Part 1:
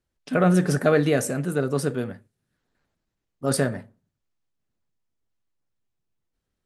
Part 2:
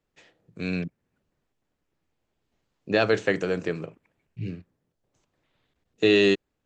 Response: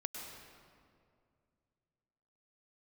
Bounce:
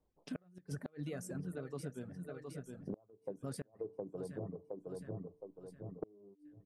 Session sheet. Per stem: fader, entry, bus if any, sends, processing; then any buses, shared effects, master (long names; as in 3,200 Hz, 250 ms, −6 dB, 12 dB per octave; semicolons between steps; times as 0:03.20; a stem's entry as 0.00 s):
−10.5 dB, 0.00 s, no send, echo send −13.5 dB, low-shelf EQ 230 Hz +9 dB
+0.5 dB, 0.00 s, no send, echo send −6.5 dB, Butterworth low-pass 1,100 Hz 72 dB per octave; hum removal 148.7 Hz, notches 3; automatic ducking −16 dB, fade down 0.20 s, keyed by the first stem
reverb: not used
echo: repeating echo 715 ms, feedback 36%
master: reverb reduction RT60 0.84 s; gate with flip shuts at −18 dBFS, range −34 dB; downward compressor 6 to 1, threshold −40 dBFS, peak gain reduction 14.5 dB